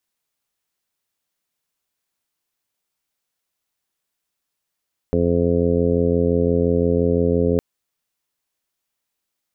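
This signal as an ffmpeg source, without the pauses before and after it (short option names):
-f lavfi -i "aevalsrc='0.0708*sin(2*PI*85.8*t)+0.075*sin(2*PI*171.6*t)+0.0794*sin(2*PI*257.4*t)+0.0447*sin(2*PI*343.2*t)+0.1*sin(2*PI*429*t)+0.0708*sin(2*PI*514.8*t)+0.015*sin(2*PI*600.6*t)+0.00794*sin(2*PI*686.4*t)':d=2.46:s=44100"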